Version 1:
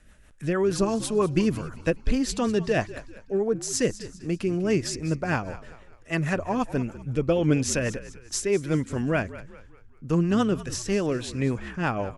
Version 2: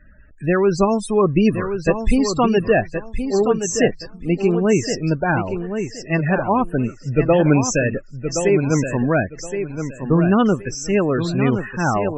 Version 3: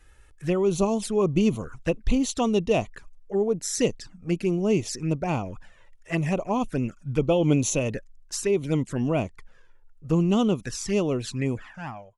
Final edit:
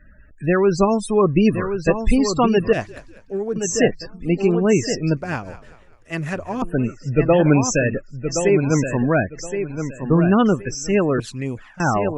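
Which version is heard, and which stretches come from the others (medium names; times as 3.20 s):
2
2.73–3.56 s: from 1
5.17–6.62 s: from 1
11.20–11.80 s: from 3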